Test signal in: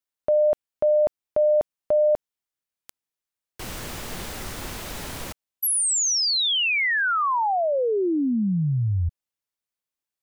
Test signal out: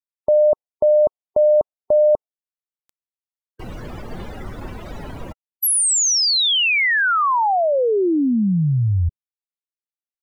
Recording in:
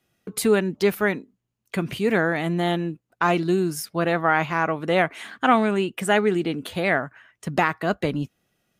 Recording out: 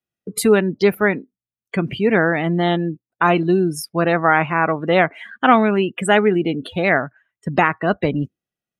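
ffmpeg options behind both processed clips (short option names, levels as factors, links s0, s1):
-af "afftdn=nr=24:nf=-35,volume=1.78"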